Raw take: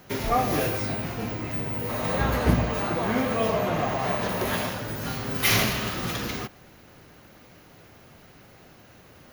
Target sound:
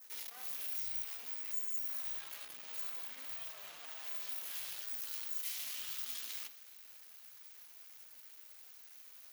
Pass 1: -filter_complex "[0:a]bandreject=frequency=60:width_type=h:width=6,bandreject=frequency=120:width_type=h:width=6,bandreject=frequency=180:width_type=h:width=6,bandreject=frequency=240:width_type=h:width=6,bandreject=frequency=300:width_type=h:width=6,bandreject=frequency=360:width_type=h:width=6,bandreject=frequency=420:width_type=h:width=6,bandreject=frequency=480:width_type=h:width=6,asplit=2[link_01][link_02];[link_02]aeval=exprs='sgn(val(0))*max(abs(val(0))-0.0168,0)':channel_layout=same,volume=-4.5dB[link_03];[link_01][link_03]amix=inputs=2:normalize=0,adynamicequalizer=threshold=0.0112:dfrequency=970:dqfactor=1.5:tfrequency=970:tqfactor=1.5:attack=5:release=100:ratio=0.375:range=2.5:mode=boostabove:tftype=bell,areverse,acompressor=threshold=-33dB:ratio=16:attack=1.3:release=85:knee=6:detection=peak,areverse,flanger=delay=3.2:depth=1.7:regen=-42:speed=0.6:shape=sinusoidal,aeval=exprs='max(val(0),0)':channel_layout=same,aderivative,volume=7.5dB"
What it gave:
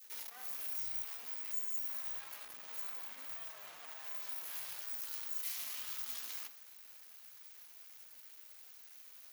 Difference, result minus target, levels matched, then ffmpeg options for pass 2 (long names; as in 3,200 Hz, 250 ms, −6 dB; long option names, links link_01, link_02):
1,000 Hz band +2.5 dB
-filter_complex "[0:a]bandreject=frequency=60:width_type=h:width=6,bandreject=frequency=120:width_type=h:width=6,bandreject=frequency=180:width_type=h:width=6,bandreject=frequency=240:width_type=h:width=6,bandreject=frequency=300:width_type=h:width=6,bandreject=frequency=360:width_type=h:width=6,bandreject=frequency=420:width_type=h:width=6,bandreject=frequency=480:width_type=h:width=6,asplit=2[link_01][link_02];[link_02]aeval=exprs='sgn(val(0))*max(abs(val(0))-0.0168,0)':channel_layout=same,volume=-4.5dB[link_03];[link_01][link_03]amix=inputs=2:normalize=0,adynamicequalizer=threshold=0.0112:dfrequency=3300:dqfactor=1.5:tfrequency=3300:tqfactor=1.5:attack=5:release=100:ratio=0.375:range=2.5:mode=boostabove:tftype=bell,areverse,acompressor=threshold=-33dB:ratio=16:attack=1.3:release=85:knee=6:detection=peak,areverse,flanger=delay=3.2:depth=1.7:regen=-42:speed=0.6:shape=sinusoidal,aeval=exprs='max(val(0),0)':channel_layout=same,aderivative,volume=7.5dB"